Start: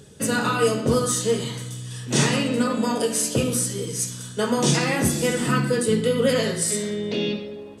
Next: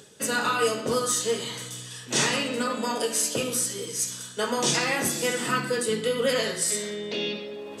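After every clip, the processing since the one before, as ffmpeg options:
ffmpeg -i in.wav -af "highpass=frequency=620:poles=1,equalizer=frequency=9400:width_type=o:width=0.21:gain=-4.5,areverse,acompressor=mode=upward:threshold=-31dB:ratio=2.5,areverse" out.wav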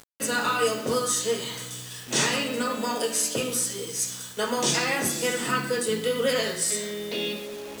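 ffmpeg -i in.wav -af "acrusher=bits=6:mix=0:aa=0.000001" out.wav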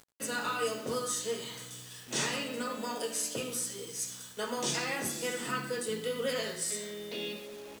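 ffmpeg -i in.wav -af "aecho=1:1:85:0.1,volume=-8.5dB" out.wav

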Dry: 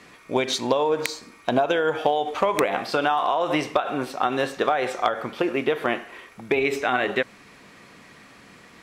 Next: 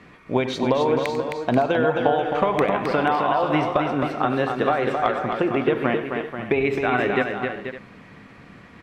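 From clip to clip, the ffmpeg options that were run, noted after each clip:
ffmpeg -i in.wav -filter_complex "[0:a]bass=frequency=250:gain=8,treble=frequency=4000:gain=-14,asplit=2[link_01][link_02];[link_02]aecho=0:1:95|264|485|559:0.178|0.531|0.335|0.158[link_03];[link_01][link_03]amix=inputs=2:normalize=0" out.wav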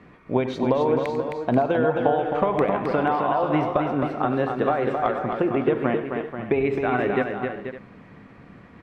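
ffmpeg -i in.wav -af "highshelf=frequency=2000:gain=-11" out.wav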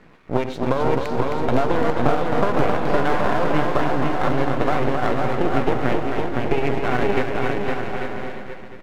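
ffmpeg -i in.wav -af "bandreject=frequency=1200:width=20,aeval=exprs='max(val(0),0)':channel_layout=same,aecho=1:1:510|841.5|1057|1197|1288:0.631|0.398|0.251|0.158|0.1,volume=3.5dB" out.wav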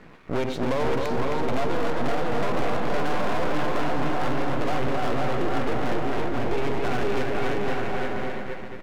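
ffmpeg -i in.wav -af "asoftclip=type=tanh:threshold=-18dB,volume=2dB" out.wav

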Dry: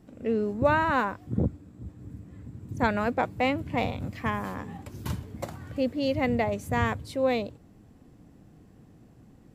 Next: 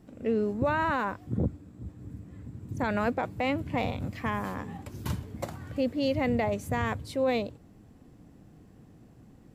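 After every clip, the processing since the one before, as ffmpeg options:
ffmpeg -i in.wav -af "alimiter=limit=-18.5dB:level=0:latency=1:release=29" out.wav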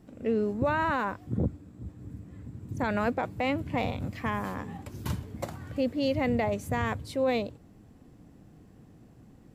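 ffmpeg -i in.wav -af anull out.wav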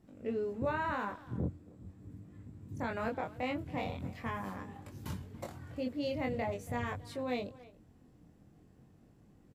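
ffmpeg -i in.wav -filter_complex "[0:a]flanger=delay=20:depth=4:speed=0.42,asplit=2[link_01][link_02];[link_02]adelay=280,highpass=300,lowpass=3400,asoftclip=type=hard:threshold=-27.5dB,volume=-18dB[link_03];[link_01][link_03]amix=inputs=2:normalize=0,volume=-4.5dB" out.wav

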